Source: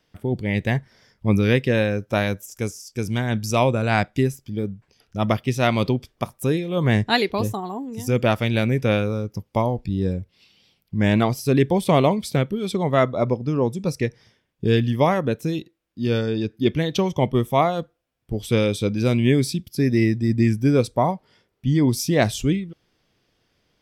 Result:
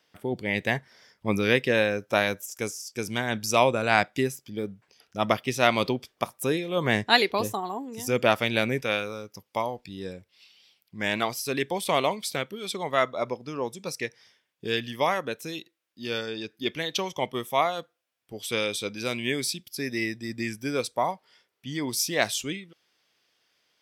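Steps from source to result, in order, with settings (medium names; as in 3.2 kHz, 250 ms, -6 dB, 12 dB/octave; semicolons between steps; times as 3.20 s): high-pass 570 Hz 6 dB/octave, from 8.81 s 1.4 kHz; trim +1.5 dB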